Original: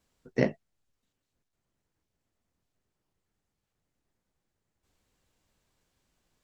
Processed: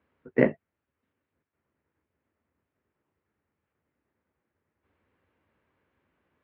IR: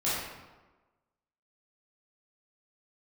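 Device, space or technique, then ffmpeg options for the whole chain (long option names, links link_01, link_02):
bass cabinet: -af "highpass=frequency=76:width=0.5412,highpass=frequency=76:width=1.3066,equalizer=frequency=120:width_type=q:width=4:gain=-9,equalizer=frequency=180:width_type=q:width=4:gain=-6,equalizer=frequency=730:width_type=q:width=4:gain=-5,lowpass=frequency=2300:width=0.5412,lowpass=frequency=2300:width=1.3066,volume=6dB"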